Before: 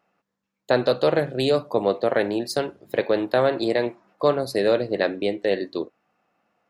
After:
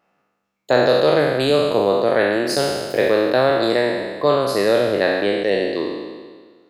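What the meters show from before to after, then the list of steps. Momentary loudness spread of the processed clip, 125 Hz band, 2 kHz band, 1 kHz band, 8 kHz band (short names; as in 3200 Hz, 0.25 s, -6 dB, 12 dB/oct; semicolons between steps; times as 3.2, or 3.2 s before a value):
6 LU, +4.0 dB, +7.5 dB, +6.0 dB, +8.5 dB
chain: spectral trails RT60 1.59 s; gain +1.5 dB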